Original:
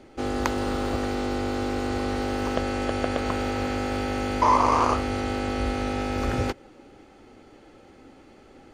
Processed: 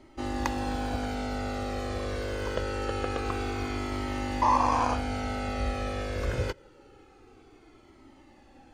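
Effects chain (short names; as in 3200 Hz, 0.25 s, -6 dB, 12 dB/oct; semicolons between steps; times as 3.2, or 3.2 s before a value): cascading flanger falling 0.25 Hz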